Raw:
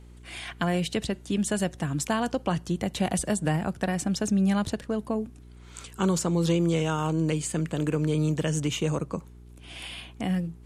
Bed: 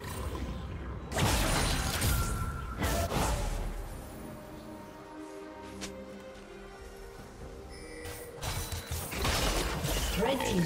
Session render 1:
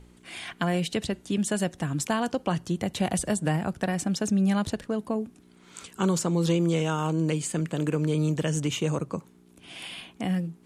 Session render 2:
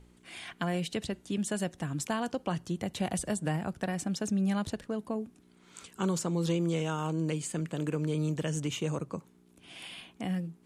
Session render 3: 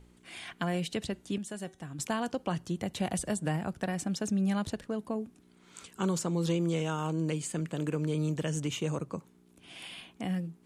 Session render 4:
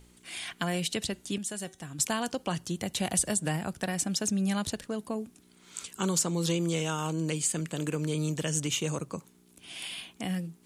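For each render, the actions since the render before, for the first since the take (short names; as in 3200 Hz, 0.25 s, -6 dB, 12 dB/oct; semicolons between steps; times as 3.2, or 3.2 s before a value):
de-hum 60 Hz, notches 2
gain -5.5 dB
1.38–1.99 resonator 380 Hz, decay 0.33 s
high shelf 2900 Hz +11.5 dB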